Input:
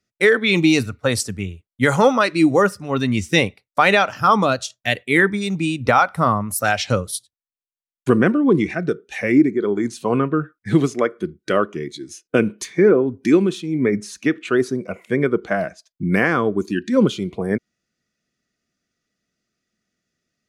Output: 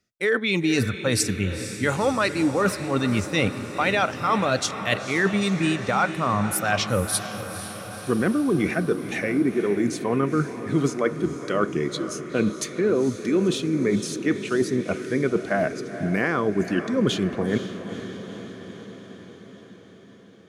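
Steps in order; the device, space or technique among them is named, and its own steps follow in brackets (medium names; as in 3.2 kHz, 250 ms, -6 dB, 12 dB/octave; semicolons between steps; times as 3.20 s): compression on the reversed sound (reverse; compression 6:1, threshold -23 dBFS, peak gain reduction 13.5 dB; reverse); echo that smears into a reverb 482 ms, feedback 66%, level -11 dB; trim +3.5 dB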